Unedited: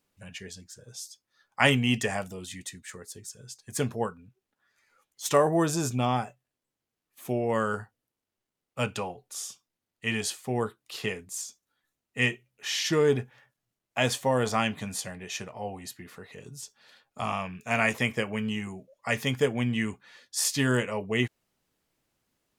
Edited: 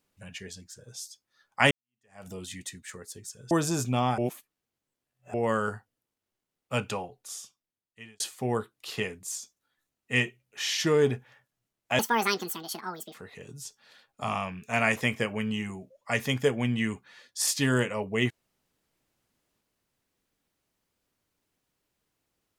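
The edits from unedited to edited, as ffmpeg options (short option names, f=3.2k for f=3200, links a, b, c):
-filter_complex "[0:a]asplit=8[a][b][c][d][e][f][g][h];[a]atrim=end=1.71,asetpts=PTS-STARTPTS,afade=t=out:st=1.706:d=0.004:c=hsin[i];[b]atrim=start=1.71:end=3.512,asetpts=PTS-STARTPTS,afade=t=in:d=0.57:c=exp[j];[c]atrim=start=5.568:end=6.242[k];[d]atrim=start=6.238:end=7.402,asetpts=PTS-STARTPTS,areverse[l];[e]atrim=start=7.398:end=10.26,asetpts=PTS-STARTPTS,afade=t=out:st=1.602:d=1.26[m];[f]atrim=start=10.26:end=14.054,asetpts=PTS-STARTPTS,afade=t=in:d=0.004:c=hsin[n];[g]atrim=start=14.05:end=16.12,asetpts=PTS-STARTPTS,asetrate=78939,aresample=44100,atrim=end_sample=50998,asetpts=PTS-STARTPTS[o];[h]atrim=start=16.116[p];[i][j]concat=n=2:v=0:a=1[q];[q][k]acrossfade=d=0.004:c1=hsin:c2=hsin[r];[r][l]acrossfade=d=0.004:c1=hsin:c2=hsin[s];[m][n]concat=n=2:v=0:a=1[t];[s][t]acrossfade=d=0.004:c1=hsin:c2=hsin[u];[u][o]acrossfade=d=0.004:c1=hsin:c2=hsin[v];[v][p]acrossfade=d=0.004:c1=hsin:c2=hsin"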